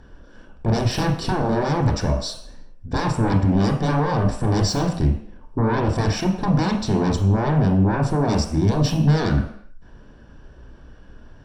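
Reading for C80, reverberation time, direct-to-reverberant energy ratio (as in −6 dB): 9.5 dB, non-exponential decay, 2.5 dB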